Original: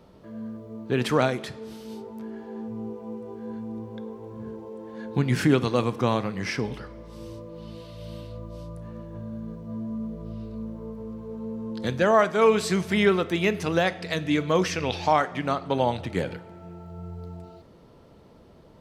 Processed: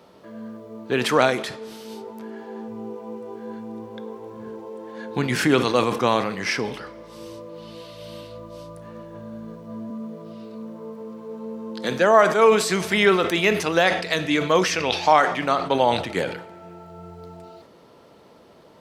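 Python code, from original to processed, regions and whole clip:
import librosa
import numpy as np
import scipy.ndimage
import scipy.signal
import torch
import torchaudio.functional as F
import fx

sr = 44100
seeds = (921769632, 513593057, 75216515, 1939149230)

y = fx.chain(x, sr, fx.highpass(hz=140.0, slope=24),
    fx.dynamic_eq(hz=3100.0, q=0.73, threshold_db=-35.0, ratio=4.0, max_db=-4), at=(9.9, 12.69))
y = fx.highpass(y, sr, hz=480.0, slope=6)
y = fx.sustainer(y, sr, db_per_s=87.0)
y = y * librosa.db_to_amplitude(6.5)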